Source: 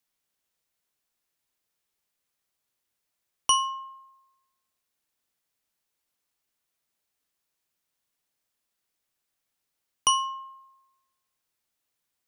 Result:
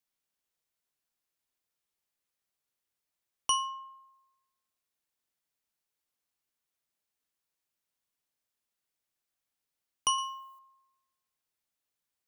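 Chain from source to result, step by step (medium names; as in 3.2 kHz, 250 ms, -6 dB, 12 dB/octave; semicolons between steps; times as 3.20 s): 10.18–10.59 s: RIAA curve recording; trim -6 dB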